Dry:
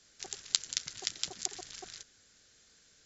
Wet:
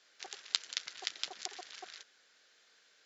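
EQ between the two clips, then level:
band-pass filter 550–3,700 Hz
+2.5 dB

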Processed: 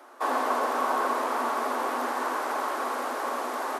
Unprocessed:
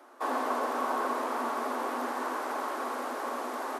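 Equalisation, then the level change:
low-shelf EQ 210 Hz −11 dB
+5.0 dB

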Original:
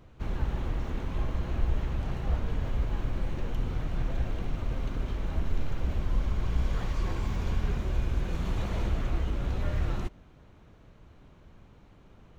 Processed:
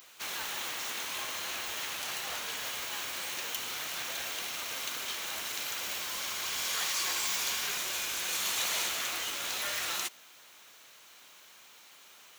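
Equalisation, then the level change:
high-pass filter 1,000 Hz 6 dB per octave
spectral tilt +4.5 dB per octave
high-shelf EQ 4,000 Hz +8 dB
+5.0 dB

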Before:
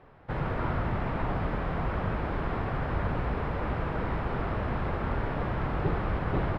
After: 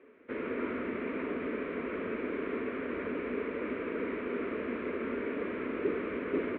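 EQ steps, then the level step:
high-frequency loss of the air 280 metres
loudspeaker in its box 240–3,600 Hz, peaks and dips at 250 Hz +8 dB, 430 Hz +7 dB, 790 Hz +4 dB, 2,300 Hz +9 dB
phaser with its sweep stopped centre 330 Hz, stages 4
0.0 dB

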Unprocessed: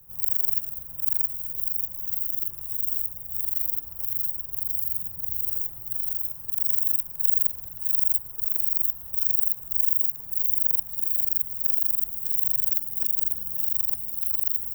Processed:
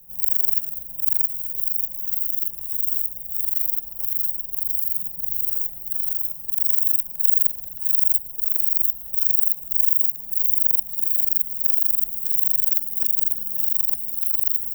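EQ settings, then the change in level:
phaser with its sweep stopped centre 360 Hz, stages 6
+4.0 dB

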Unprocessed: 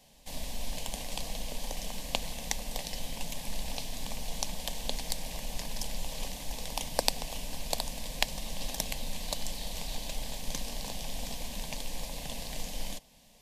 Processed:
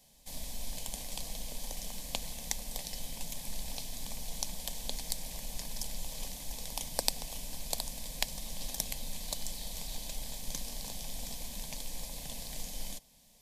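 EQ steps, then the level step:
bass and treble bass +3 dB, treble +1 dB
high-shelf EQ 5,100 Hz +8.5 dB
notch filter 2,800 Hz, Q 15
−7.0 dB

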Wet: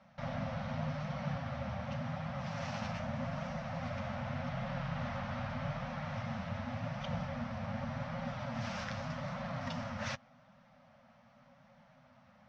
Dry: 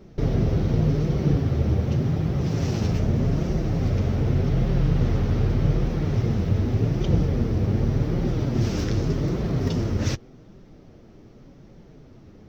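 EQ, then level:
Chebyshev band-stop filter 250–540 Hz, order 4
low-pass filter 1,300 Hz 12 dB per octave
first difference
+17.0 dB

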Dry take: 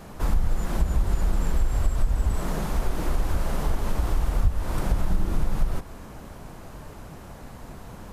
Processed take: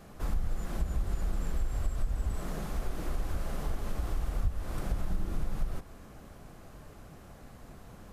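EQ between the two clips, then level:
notch filter 930 Hz, Q 9.3
−8.5 dB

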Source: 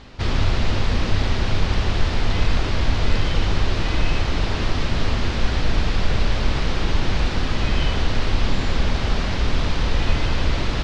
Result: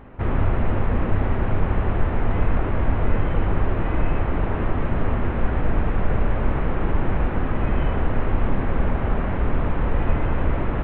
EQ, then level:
Gaussian smoothing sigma 4.8 samples
low-shelf EQ 160 Hz −4 dB
+2.5 dB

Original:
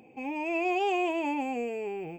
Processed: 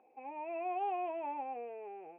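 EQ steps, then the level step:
four-pole ladder band-pass 1,000 Hz, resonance 20%
high-frequency loss of the air 470 metres
notch filter 1,000 Hz, Q 20
+7.0 dB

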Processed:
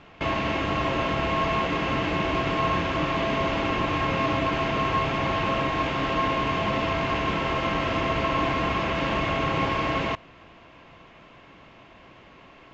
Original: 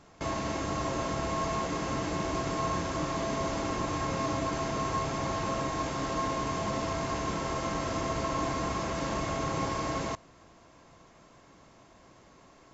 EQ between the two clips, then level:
low-pass with resonance 2,800 Hz, resonance Q 2.8
+5.5 dB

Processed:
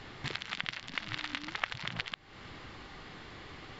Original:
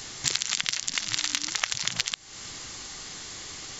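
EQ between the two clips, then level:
high-frequency loss of the air 440 metres
0.0 dB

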